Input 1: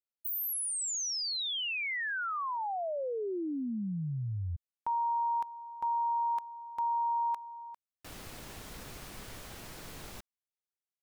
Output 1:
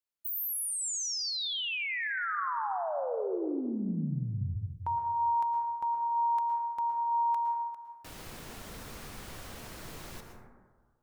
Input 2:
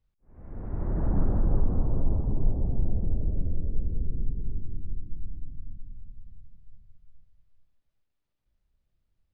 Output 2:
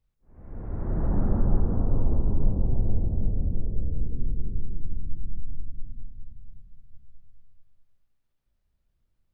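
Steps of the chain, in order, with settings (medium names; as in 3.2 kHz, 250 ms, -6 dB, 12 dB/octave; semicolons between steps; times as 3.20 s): plate-style reverb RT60 1.6 s, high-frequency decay 0.25×, pre-delay 100 ms, DRR 3.5 dB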